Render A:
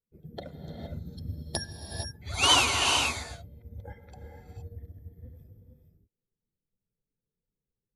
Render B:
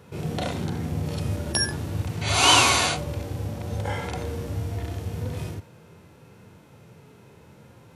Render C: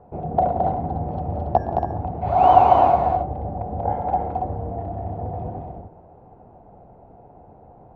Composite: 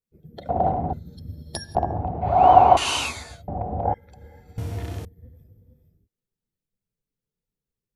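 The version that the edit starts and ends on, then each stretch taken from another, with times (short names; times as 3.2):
A
0.49–0.93 from C
1.75–2.77 from C
3.48–3.94 from C
4.58–5.05 from B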